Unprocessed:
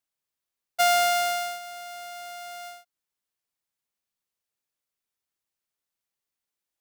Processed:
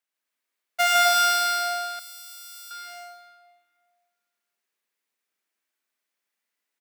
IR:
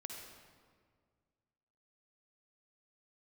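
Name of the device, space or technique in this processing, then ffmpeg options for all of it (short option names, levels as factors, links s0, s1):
stadium PA: -filter_complex "[0:a]highpass=f=190:w=0.5412,highpass=f=190:w=1.3066,equalizer=f=1900:t=o:w=1.2:g=7,aecho=1:1:154.5|262.4:0.794|0.708[s0];[1:a]atrim=start_sample=2205[s1];[s0][s1]afir=irnorm=-1:irlink=0,asettb=1/sr,asplit=3[s2][s3][s4];[s2]atrim=end=1.994[s5];[s3]atrim=start=1.99:end=2.71,asetpts=PTS-STARTPTS,afade=t=in:d=0.004:c=qsin,afade=t=out:st=0.716:d=0.004:c=qsin,aderivative[s6];[s4]atrim=start=2.706[s7];[s5][s6]acrossfade=d=0.004:c1=hsin:c2=qsin[s8];[s8][s7]acrossfade=d=0.004:c1=qsin:c2=hsin,volume=1.33"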